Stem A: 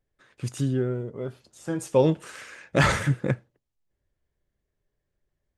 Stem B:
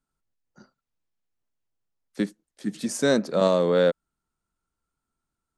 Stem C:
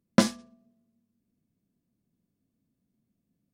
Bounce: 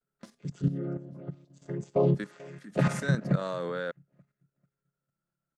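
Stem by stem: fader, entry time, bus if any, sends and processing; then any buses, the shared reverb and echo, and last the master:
+1.0 dB, 0.00 s, no send, echo send −22.5 dB, channel vocoder with a chord as carrier major triad, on C#3
−10.0 dB, 0.00 s, no send, no echo send, parametric band 1,500 Hz +11.5 dB 0.84 octaves
−20.0 dB, 0.05 s, no send, echo send −19 dB, automatic ducking −13 dB, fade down 0.45 s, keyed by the first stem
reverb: not used
echo: repeating echo 440 ms, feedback 25%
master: high-shelf EQ 4,600 Hz +4 dB; output level in coarse steps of 11 dB

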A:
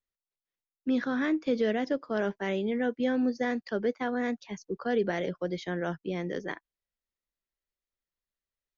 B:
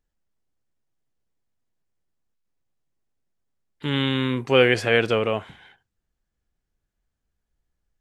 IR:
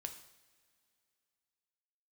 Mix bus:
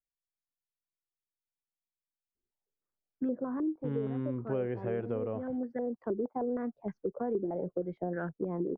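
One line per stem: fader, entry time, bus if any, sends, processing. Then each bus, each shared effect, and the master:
−6.0 dB, 2.35 s, no send, low-pass on a step sequencer 6.4 Hz 360–1,600 Hz; automatic ducking −10 dB, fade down 0.45 s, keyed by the second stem
−11.5 dB, 0.00 s, no send, low-pass filter 1,500 Hz 12 dB per octave; noise gate −45 dBFS, range −23 dB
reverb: not used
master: tilt shelving filter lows +9 dB, about 1,100 Hz; downward compressor 4 to 1, threshold −31 dBFS, peak gain reduction 13 dB

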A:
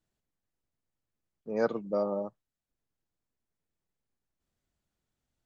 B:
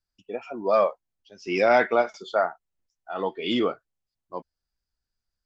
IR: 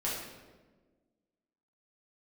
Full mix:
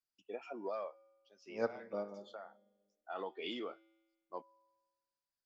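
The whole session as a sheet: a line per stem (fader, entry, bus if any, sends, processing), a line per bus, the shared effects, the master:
−1.5 dB, 0.00 s, send −19.5 dB, expander for the loud parts 2.5 to 1, over −38 dBFS
−4.5 dB, 0.00 s, no send, downward compressor 12 to 1, threshold −28 dBFS, peak gain reduction 14.5 dB; high-pass filter 280 Hz 12 dB per octave; automatic ducking −10 dB, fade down 0.50 s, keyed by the first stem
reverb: on, RT60 1.4 s, pre-delay 5 ms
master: tuned comb filter 110 Hz, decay 1.3 s, harmonics odd, mix 40%

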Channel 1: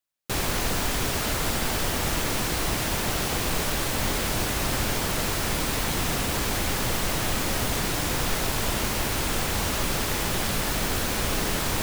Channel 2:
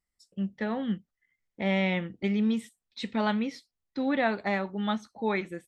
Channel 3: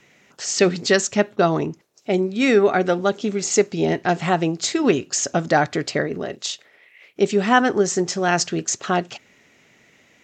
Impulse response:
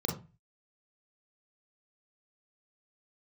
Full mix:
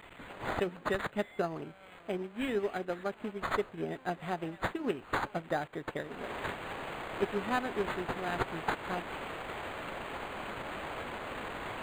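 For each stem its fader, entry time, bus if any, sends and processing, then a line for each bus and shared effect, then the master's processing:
0.0 dB, 0.00 s, no send, high-pass filter 550 Hz 12 dB per octave; parametric band 3,100 Hz −8.5 dB 3 octaves; brickwall limiter −29.5 dBFS, peak gain reduction 9.5 dB; automatic ducking −20 dB, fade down 0.75 s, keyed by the second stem
−16.5 dB, 0.00 s, no send, sign of each sample alone; high-pass filter 520 Hz 12 dB per octave
−18.0 dB, 0.00 s, no send, high-shelf EQ 4,400 Hz +11.5 dB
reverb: not used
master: transient designer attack +5 dB, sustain −4 dB; linearly interpolated sample-rate reduction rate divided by 8×

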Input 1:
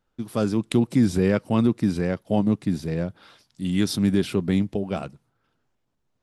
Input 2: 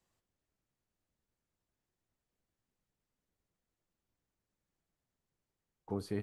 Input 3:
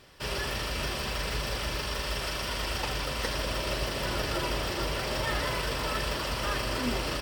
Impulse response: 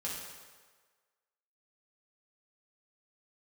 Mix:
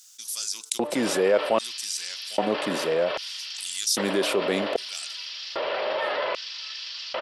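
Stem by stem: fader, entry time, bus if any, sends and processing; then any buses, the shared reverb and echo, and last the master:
−1.5 dB, 0.00 s, no send, no processing
−7.0 dB, 0.00 s, no send, downward compressor, threshold −44 dBFS, peak gain reduction 12.5 dB
−8.0 dB, 0.75 s, no send, Butterworth low-pass 4,200 Hz 36 dB per octave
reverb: not used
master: hum removal 148.3 Hz, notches 10; auto-filter high-pass square 0.63 Hz 560–6,100 Hz; envelope flattener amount 50%

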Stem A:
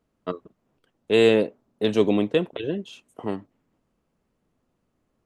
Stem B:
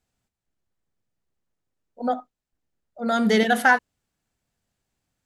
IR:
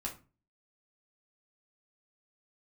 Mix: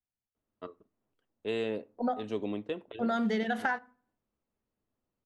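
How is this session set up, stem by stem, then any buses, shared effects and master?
−13.5 dB, 0.35 s, send −16 dB, parametric band 170 Hz −9 dB 0.31 octaves
−0.5 dB, 0.00 s, send −15.5 dB, noise gate with hold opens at −35 dBFS; high-shelf EQ 7,500 Hz −9.5 dB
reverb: on, RT60 0.35 s, pre-delay 5 ms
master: high-shelf EQ 8,100 Hz −10.5 dB; downward compressor 10 to 1, threshold −27 dBFS, peak gain reduction 14.5 dB

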